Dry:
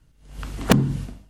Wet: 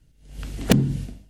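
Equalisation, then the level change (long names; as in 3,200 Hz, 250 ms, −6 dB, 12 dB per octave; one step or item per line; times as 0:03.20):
parametric band 1,100 Hz −10.5 dB 0.94 octaves
0.0 dB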